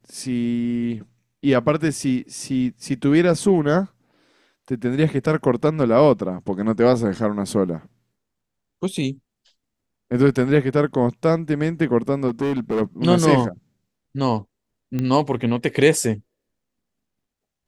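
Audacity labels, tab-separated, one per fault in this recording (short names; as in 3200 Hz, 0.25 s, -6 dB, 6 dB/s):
12.270000	12.820000	clipped -17.5 dBFS
14.990000	14.990000	pop -13 dBFS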